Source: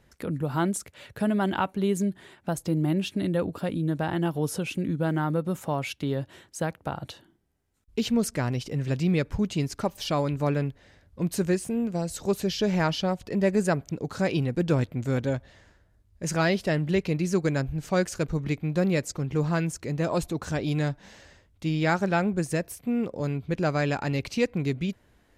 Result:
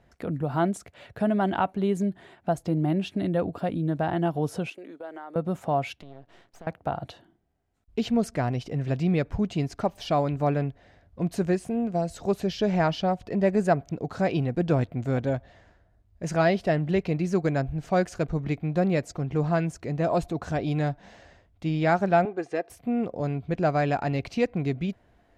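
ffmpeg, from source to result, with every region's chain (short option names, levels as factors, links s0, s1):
-filter_complex "[0:a]asettb=1/sr,asplit=3[s0][s1][s2];[s0]atrim=end=4.704[s3];[s1]atrim=start=4.7:end=5.36,asetpts=PTS-STARTPTS,afade=t=in:d=0.004:c=qsin,afade=t=out:st=0.656:d=0.004:c=qsin,highpass=f=370:w=0.5412,highpass=f=370:w=1.3066,agate=range=0.0224:threshold=0.00794:ratio=3:release=100:detection=peak,acompressor=threshold=0.01:ratio=3:attack=3.2:release=140:knee=1:detection=peak[s4];[s2]atrim=start=5.356[s5];[s3][s4]acrossfade=d=0.004:c1=hsin:c2=qsin[s6];[s6][s5]acrossfade=d=0.004:c1=qsin:c2=hsin,asettb=1/sr,asplit=3[s7][s8][s9];[s7]atrim=end=6.014[s10];[s8]atrim=start=6.01:end=6.67,asetpts=PTS-STARTPTS,afade=t=in:d=0.004:c=qsin,afade=t=out:st=0.656:d=0.004:c=qsin,highpass=100,lowpass=7600,acompressor=threshold=0.01:ratio=8:attack=3.2:release=140:knee=1:detection=peak,aeval=exprs='max(val(0),0)':c=same[s11];[s9]atrim=start=6.666[s12];[s10][s11]acrossfade=d=0.004:c1=hsin:c2=qsin[s13];[s13][s12]acrossfade=d=0.004:c1=qsin:c2=hsin,asettb=1/sr,asplit=3[s14][s15][s16];[s14]atrim=end=22.254[s17];[s15]atrim=start=22.25:end=22.7,asetpts=PTS-STARTPTS,afade=t=in:d=0.004:c=qsin,afade=t=out:st=0.446:d=0.004:c=qsin,highpass=360,lowpass=5300,highshelf=f=4200:g=-6,aecho=1:1:2.5:0.51,atrim=end_sample=19845[s18];[s16]atrim=start=22.696[s19];[s17][s18]acrossfade=d=0.004:c1=hsin:c2=qsin[s20];[s20][s19]acrossfade=d=0.004:c1=qsin:c2=hsin,lowpass=f=2700:p=1,equalizer=f=700:t=o:w=0.25:g=10"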